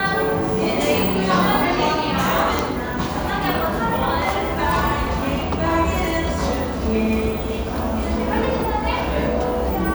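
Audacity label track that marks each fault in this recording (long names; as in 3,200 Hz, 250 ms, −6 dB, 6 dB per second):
2.590000	2.590000	click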